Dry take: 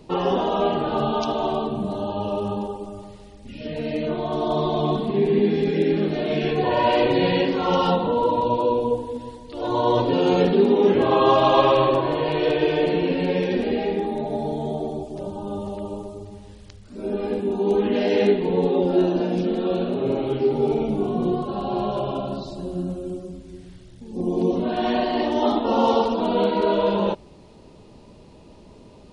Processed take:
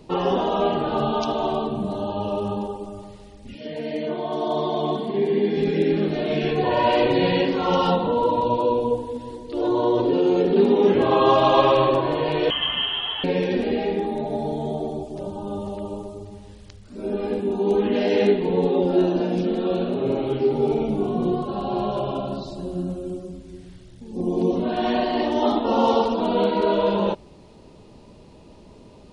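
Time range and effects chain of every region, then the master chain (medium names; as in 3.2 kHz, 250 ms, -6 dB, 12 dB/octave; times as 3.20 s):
3.55–5.57 s: high-pass 200 Hz 6 dB/octave + comb of notches 1.3 kHz
9.30–10.56 s: peaking EQ 370 Hz +10.5 dB 0.81 oct + compression 2.5:1, threshold -19 dBFS
12.50–13.24 s: high-pass 510 Hz + frequency inversion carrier 3.6 kHz
whole clip: none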